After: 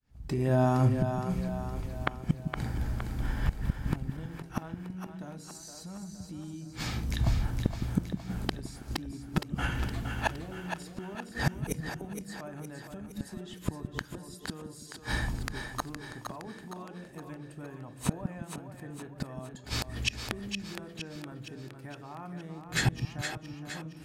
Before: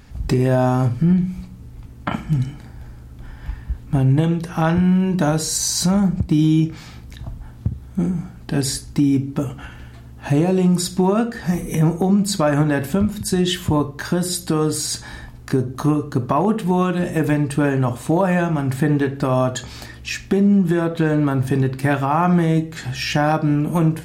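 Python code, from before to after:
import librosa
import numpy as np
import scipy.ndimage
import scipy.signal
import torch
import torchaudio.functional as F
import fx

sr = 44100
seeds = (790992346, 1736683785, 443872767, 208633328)

y = fx.fade_in_head(x, sr, length_s=2.77)
y = fx.gate_flip(y, sr, shuts_db=-18.0, range_db=-31)
y = fx.echo_split(y, sr, split_hz=320.0, low_ms=162, high_ms=465, feedback_pct=52, wet_db=-6.5)
y = F.gain(torch.from_numpy(y), 4.5).numpy()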